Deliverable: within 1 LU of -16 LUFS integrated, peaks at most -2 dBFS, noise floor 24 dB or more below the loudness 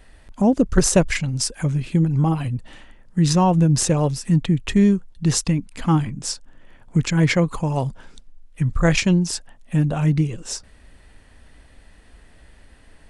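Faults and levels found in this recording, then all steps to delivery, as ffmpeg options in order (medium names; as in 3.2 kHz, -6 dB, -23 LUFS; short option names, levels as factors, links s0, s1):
loudness -20.5 LUFS; peak level -2.5 dBFS; loudness target -16.0 LUFS
-> -af "volume=1.68,alimiter=limit=0.794:level=0:latency=1"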